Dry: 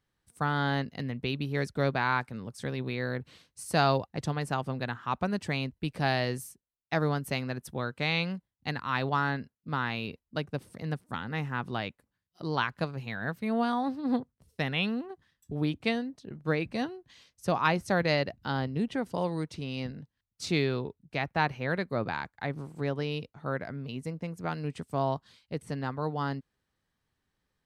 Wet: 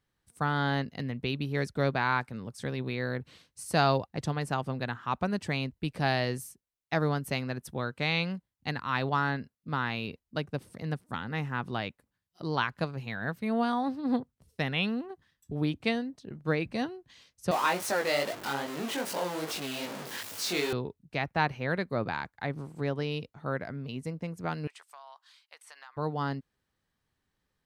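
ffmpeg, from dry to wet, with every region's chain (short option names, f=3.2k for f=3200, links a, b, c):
-filter_complex "[0:a]asettb=1/sr,asplit=3[a][b][c];[a]atrim=end=17.514[d];[b]atrim=start=17.51:end=20.73,asetpts=PTS-STARTPTS,afade=t=in:d=0.004:c=qsin,afade=t=out:st=3.216:d=0.004:c=qsin,aeval=exprs='val(0)+0.5*0.0501*sgn(val(0))':c=same,highpass=350,flanger=delay=18:depth=4.4:speed=2.5[e];[c]atrim=start=20.726[f];[d][e]acrossfade=d=0.004:c1=hsin:c2=qsin[g];[g][f]acrossfade=d=0.004:c1=qsin:c2=hsin,asettb=1/sr,asplit=3[h][i][j];[h]atrim=end=24.674[k];[i]atrim=start=24.67:end=25.97,asetpts=PTS-STARTPTS,afade=t=in:d=0.004:c=qsin,afade=t=out:st=1.296:d=0.004:c=qsin,highpass=f=910:w=0.5412,highpass=f=910:w=1.3066,acompressor=threshold=-45dB:ratio=8:attack=3.2:release=140:knee=1:detection=peak[l];[j]atrim=start=25.966[m];[k][l]acrossfade=d=0.004:c1=hsin:c2=qsin[n];[n][m]acrossfade=d=0.004:c1=qsin:c2=hsin"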